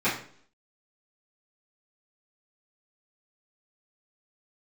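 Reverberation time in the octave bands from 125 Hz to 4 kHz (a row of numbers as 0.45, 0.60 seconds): 0.55, 0.65, 0.60, 0.50, 0.50, 0.50 seconds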